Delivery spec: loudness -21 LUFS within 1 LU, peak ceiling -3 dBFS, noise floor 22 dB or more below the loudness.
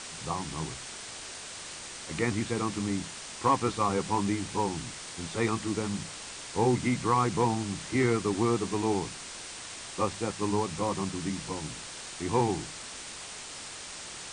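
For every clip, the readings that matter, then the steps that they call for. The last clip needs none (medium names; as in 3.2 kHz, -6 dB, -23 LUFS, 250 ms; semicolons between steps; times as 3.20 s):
noise floor -43 dBFS; noise floor target -54 dBFS; loudness -31.5 LUFS; peak level -12.5 dBFS; loudness target -21.0 LUFS
-> noise reduction 11 dB, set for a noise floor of -43 dBFS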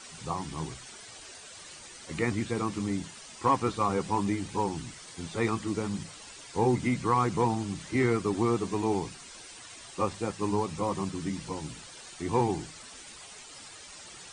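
noise floor -48 dBFS; noise floor target -53 dBFS
-> noise reduction 6 dB, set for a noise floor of -48 dBFS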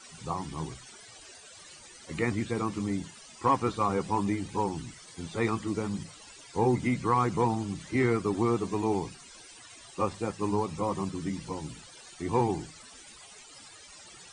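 noise floor -51 dBFS; noise floor target -53 dBFS
-> noise reduction 6 dB, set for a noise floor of -51 dBFS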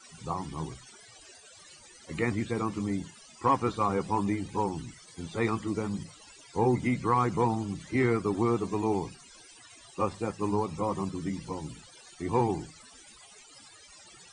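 noise floor -54 dBFS; loudness -30.5 LUFS; peak level -13.0 dBFS; loudness target -21.0 LUFS
-> trim +9.5 dB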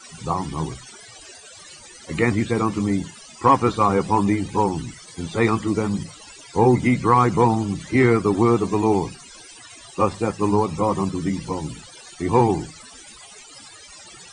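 loudness -21.0 LUFS; peak level -3.5 dBFS; noise floor -44 dBFS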